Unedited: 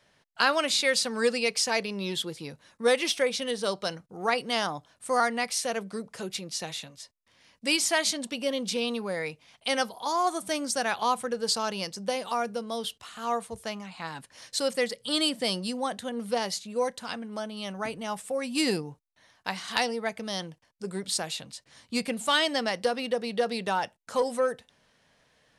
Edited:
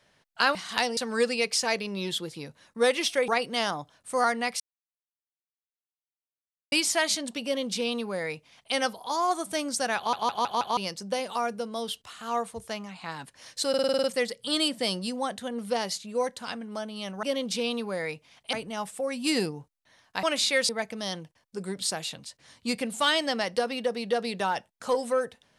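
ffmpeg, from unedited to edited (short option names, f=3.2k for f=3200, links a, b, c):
-filter_complex "[0:a]asplit=22[a][b][c][d][e][f][g][h][i][j][k][l][m][n][o][p][q][r][s][t][u][v];[a]atrim=end=0.552[w];[b]atrim=start=19.538:end=19.962[x];[c]atrim=start=1.008:end=3.322[y];[d]atrim=start=4.238:end=5.56,asetpts=PTS-STARTPTS,afade=t=out:st=1.318:d=0.004:c=hsin[z];[e]atrim=start=5.56:end=7.68,asetpts=PTS-STARTPTS,volume=0[aa];[f]atrim=start=7.68:end=11.092,asetpts=PTS-STARTPTS,afade=t=in:d=0.004:c=hsin[ab];[g]atrim=start=10.928:end=11.092[ac];[h]atrim=start=10.928:end=11.092[ad];[i]atrim=start=10.928:end=11.092[ae];[j]atrim=start=10.928:end=11.092[af];[k]atrim=start=11.728:end=14.702[ag];[l]atrim=start=14.648:end=14.702[ah];[m]atrim=start=14.648:end=14.702[ai];[n]atrim=start=14.648:end=14.702[aj];[o]atrim=start=14.648:end=14.702[ak];[p]atrim=start=14.648:end=14.702[al];[q]atrim=start=14.648:end=14.702[am];[r]atrim=start=14.648:end=17.842[an];[s]atrim=start=8.398:end=9.702[ao];[t]atrim=start=17.838:end=19.542[ap];[u]atrim=start=0.548:end=1.012[aq];[v]atrim=start=19.958[ar];[w][x]acrossfade=d=0.004:c1=hsin:c2=hsin[as];[as][y]acrossfade=d=0.004:c1=hsin:c2=hsin[at];[z][aa][ab]concat=n=3:v=0:a=1[au];[at][au]acrossfade=d=0.004:c1=hsin:c2=hsin[av];[av][ac]acrossfade=d=0.004:c1=hsin:c2=hsin[aw];[aw][ad]acrossfade=d=0.004:c1=hsin:c2=hsin[ax];[ax][ae]acrossfade=d=0.004:c1=hsin:c2=hsin[ay];[ay][af]acrossfade=d=0.004:c1=hsin:c2=hsin[az];[az][ag]acrossfade=d=0.004:c1=hsin:c2=hsin[ba];[ba][ah]acrossfade=d=0.004:c1=hsin:c2=hsin[bb];[bb][ai]acrossfade=d=0.004:c1=hsin:c2=hsin[bc];[bc][aj]acrossfade=d=0.004:c1=hsin:c2=hsin[bd];[bd][ak]acrossfade=d=0.004:c1=hsin:c2=hsin[be];[be][al]acrossfade=d=0.004:c1=hsin:c2=hsin[bf];[bf][am]acrossfade=d=0.004:c1=hsin:c2=hsin[bg];[bg][an]acrossfade=d=0.004:c1=hsin:c2=hsin[bh];[bh][ao]acrossfade=d=0.004:c1=hsin:c2=hsin[bi];[bi][ap]acrossfade=d=0.004:c1=hsin:c2=hsin[bj];[bj][aq]acrossfade=d=0.004:c1=hsin:c2=hsin[bk];[bk][ar]acrossfade=d=0.004:c1=hsin:c2=hsin"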